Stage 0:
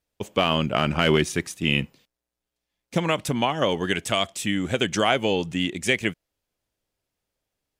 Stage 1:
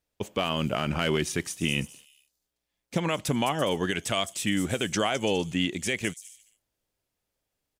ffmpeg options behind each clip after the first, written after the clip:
ffmpeg -i in.wav -filter_complex "[0:a]acrossover=split=5900[link_01][link_02];[link_01]alimiter=limit=-14dB:level=0:latency=1:release=86[link_03];[link_02]aecho=1:1:210|336|411.6|457|484.2:0.631|0.398|0.251|0.158|0.1[link_04];[link_03][link_04]amix=inputs=2:normalize=0,volume=-1dB" out.wav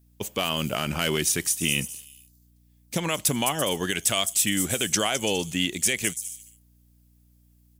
ffmpeg -i in.wav -af "aemphasis=mode=production:type=75fm,aeval=exprs='val(0)+0.00126*(sin(2*PI*60*n/s)+sin(2*PI*2*60*n/s)/2+sin(2*PI*3*60*n/s)/3+sin(2*PI*4*60*n/s)/4+sin(2*PI*5*60*n/s)/5)':channel_layout=same" out.wav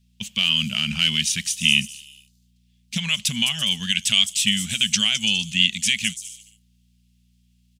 ffmpeg -i in.wav -af "firequalizer=gain_entry='entry(120,0);entry(220,8);entry(310,-25);entry(650,-15);entry(2800,14);entry(4700,8);entry(15000,-13)':delay=0.05:min_phase=1,volume=-2.5dB" out.wav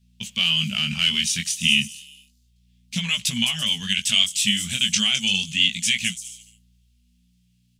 ffmpeg -i in.wav -af "flanger=delay=16.5:depth=7.3:speed=0.32,volume=2.5dB" out.wav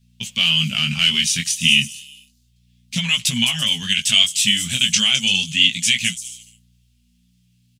ffmpeg -i in.wav -af "aecho=1:1:7.4:0.38,volume=3.5dB" out.wav

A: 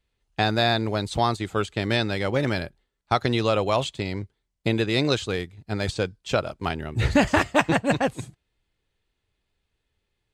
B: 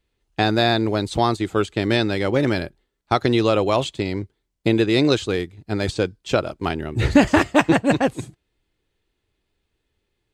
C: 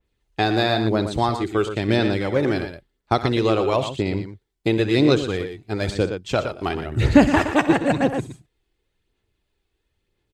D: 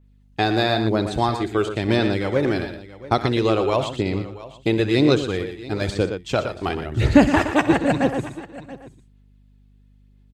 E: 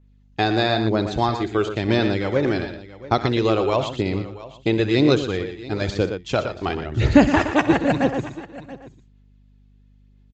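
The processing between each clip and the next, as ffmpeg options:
ffmpeg -i in.wav -af "equalizer=frequency=330:width_type=o:width=0.81:gain=6.5,volume=2dB" out.wav
ffmpeg -i in.wav -af "aecho=1:1:63|118:0.178|0.355,aphaser=in_gain=1:out_gain=1:delay=2.7:decay=0.32:speed=0.98:type=sinusoidal,adynamicequalizer=threshold=0.0251:dfrequency=2400:dqfactor=0.7:tfrequency=2400:tqfactor=0.7:attack=5:release=100:ratio=0.375:range=2:mode=cutabove:tftype=highshelf,volume=-2dB" out.wav
ffmpeg -i in.wav -af "aeval=exprs='val(0)+0.00224*(sin(2*PI*50*n/s)+sin(2*PI*2*50*n/s)/2+sin(2*PI*3*50*n/s)/3+sin(2*PI*4*50*n/s)/4+sin(2*PI*5*50*n/s)/5)':channel_layout=same,aecho=1:1:680:0.133" out.wav
ffmpeg -i in.wav -af "aresample=16000,aresample=44100" out.wav

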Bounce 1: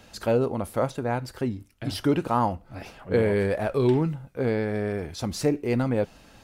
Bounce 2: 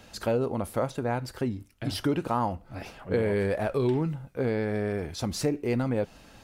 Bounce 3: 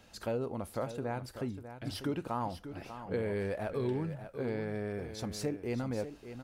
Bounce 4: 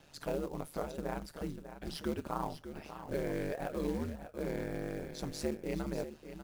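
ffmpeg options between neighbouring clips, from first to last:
ffmpeg -i in.wav -af "acompressor=threshold=-25dB:ratio=2" out.wav
ffmpeg -i in.wav -af "aecho=1:1:594:0.282,volume=-8dB" out.wav
ffmpeg -i in.wav -af "acrusher=bits=5:mode=log:mix=0:aa=0.000001,aeval=exprs='val(0)*sin(2*PI*74*n/s)':channel_layout=same,volume=1dB" out.wav

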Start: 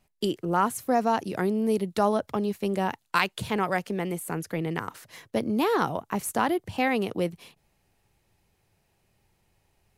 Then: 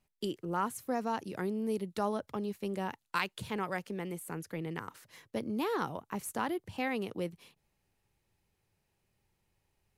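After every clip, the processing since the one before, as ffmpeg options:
ffmpeg -i in.wav -af "equalizer=frequency=690:width=4.9:gain=-4.5,volume=-8.5dB" out.wav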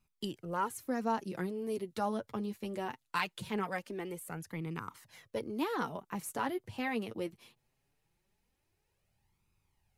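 ffmpeg -i in.wav -af "flanger=delay=0.8:depth=8.1:regen=20:speed=0.21:shape=sinusoidal,volume=2.5dB" out.wav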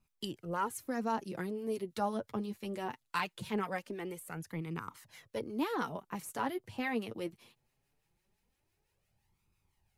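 ffmpeg -i in.wav -filter_complex "[0:a]acrossover=split=1100[link_01][link_02];[link_01]aeval=exprs='val(0)*(1-0.5/2+0.5/2*cos(2*PI*5.9*n/s))':channel_layout=same[link_03];[link_02]aeval=exprs='val(0)*(1-0.5/2-0.5/2*cos(2*PI*5.9*n/s))':channel_layout=same[link_04];[link_03][link_04]amix=inputs=2:normalize=0,volume=2dB" out.wav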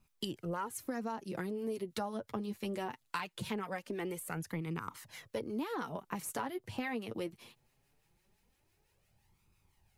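ffmpeg -i in.wav -af "acompressor=threshold=-39dB:ratio=10,volume=5dB" out.wav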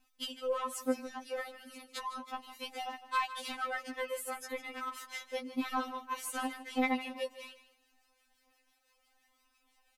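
ffmpeg -i in.wav -filter_complex "[0:a]asplit=2[link_01][link_02];[link_02]highpass=frequency=720:poles=1,volume=15dB,asoftclip=type=tanh:threshold=-20.5dB[link_03];[link_01][link_03]amix=inputs=2:normalize=0,lowpass=frequency=5500:poles=1,volume=-6dB,aecho=1:1:155|310|465:0.2|0.0459|0.0106,afftfilt=real='re*3.46*eq(mod(b,12),0)':imag='im*3.46*eq(mod(b,12),0)':win_size=2048:overlap=0.75" out.wav

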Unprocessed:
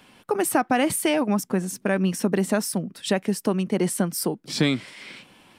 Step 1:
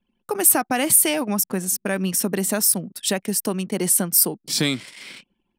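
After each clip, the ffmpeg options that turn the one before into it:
ffmpeg -i in.wav -af "anlmdn=0.1,aemphasis=mode=production:type=75fm,volume=-1dB" out.wav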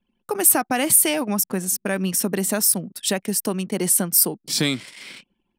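ffmpeg -i in.wav -af anull out.wav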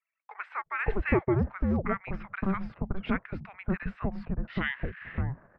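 ffmpeg -i in.wav -filter_complex "[0:a]asubboost=boost=6.5:cutoff=130,highpass=frequency=300:width_type=q:width=0.5412,highpass=frequency=300:width_type=q:width=1.307,lowpass=frequency=2500:width_type=q:width=0.5176,lowpass=frequency=2500:width_type=q:width=0.7071,lowpass=frequency=2500:width_type=q:width=1.932,afreqshift=-390,acrossover=split=1000[link_01][link_02];[link_01]adelay=570[link_03];[link_03][link_02]amix=inputs=2:normalize=0" out.wav

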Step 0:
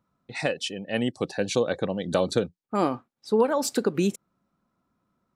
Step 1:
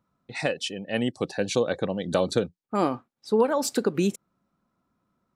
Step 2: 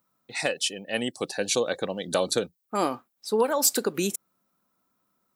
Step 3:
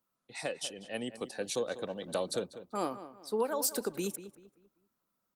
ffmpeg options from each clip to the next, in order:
ffmpeg -i in.wav -af anull out.wav
ffmpeg -i in.wav -af "aemphasis=mode=production:type=bsi" out.wav
ffmpeg -i in.wav -filter_complex "[0:a]acrossover=split=280|1800|2500[link_01][link_02][link_03][link_04];[link_03]acompressor=threshold=-52dB:ratio=6[link_05];[link_01][link_02][link_05][link_04]amix=inputs=4:normalize=0,asplit=2[link_06][link_07];[link_07]adelay=194,lowpass=frequency=3000:poles=1,volume=-13dB,asplit=2[link_08][link_09];[link_09]adelay=194,lowpass=frequency=3000:poles=1,volume=0.36,asplit=2[link_10][link_11];[link_11]adelay=194,lowpass=frequency=3000:poles=1,volume=0.36,asplit=2[link_12][link_13];[link_13]adelay=194,lowpass=frequency=3000:poles=1,volume=0.36[link_14];[link_06][link_08][link_10][link_12][link_14]amix=inputs=5:normalize=0,volume=-8dB" -ar 48000 -c:a libopus -b:a 32k out.opus

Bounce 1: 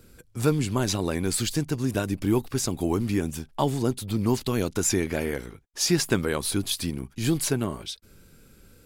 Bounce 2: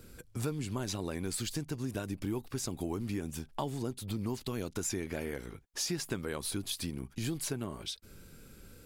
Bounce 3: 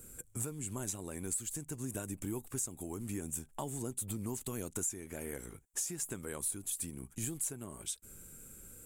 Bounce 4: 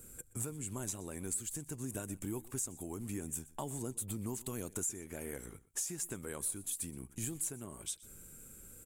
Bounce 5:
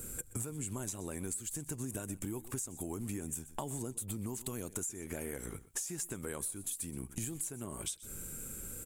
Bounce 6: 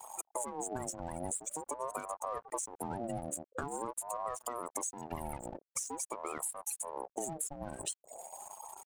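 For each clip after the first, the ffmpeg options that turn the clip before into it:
ffmpeg -i in.wav -af "acompressor=threshold=-36dB:ratio=3" out.wav
ffmpeg -i in.wav -af "highshelf=frequency=6100:width_type=q:width=3:gain=9.5,alimiter=limit=-20.5dB:level=0:latency=1:release=470,volume=-4dB" out.wav
ffmpeg -i in.wav -af "aecho=1:1:123:0.0944,volume=-1dB" out.wav
ffmpeg -i in.wav -af "acompressor=threshold=-46dB:ratio=6,volume=9.5dB" out.wav
ffmpeg -i in.wav -af "afftfilt=real='re*gte(hypot(re,im),0.0126)':imag='im*gte(hypot(re,im),0.0126)':win_size=1024:overlap=0.75,aeval=exprs='sgn(val(0))*max(abs(val(0))-0.00188,0)':channel_layout=same,aeval=exprs='val(0)*sin(2*PI*650*n/s+650*0.35/0.46*sin(2*PI*0.46*n/s))':channel_layout=same,volume=5.5dB" out.wav

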